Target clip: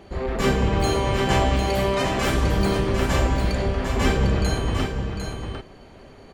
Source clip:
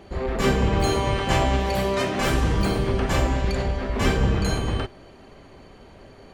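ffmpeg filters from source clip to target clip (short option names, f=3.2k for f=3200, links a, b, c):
-af "aecho=1:1:751:0.473"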